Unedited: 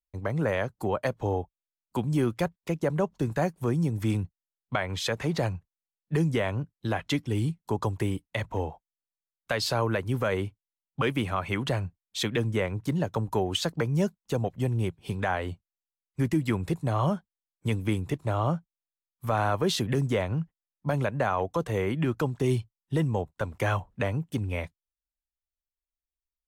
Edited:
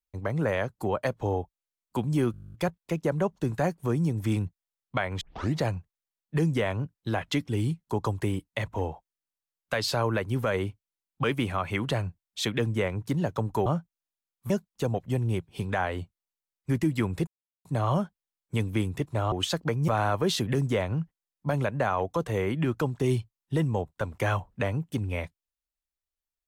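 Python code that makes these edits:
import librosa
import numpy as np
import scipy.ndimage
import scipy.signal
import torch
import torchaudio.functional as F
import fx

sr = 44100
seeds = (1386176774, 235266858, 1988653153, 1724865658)

y = fx.edit(x, sr, fx.stutter(start_s=2.32, slice_s=0.02, count=12),
    fx.tape_start(start_s=4.99, length_s=0.36),
    fx.swap(start_s=13.44, length_s=0.56, other_s=18.44, other_length_s=0.84),
    fx.insert_silence(at_s=16.77, length_s=0.38), tone=tone)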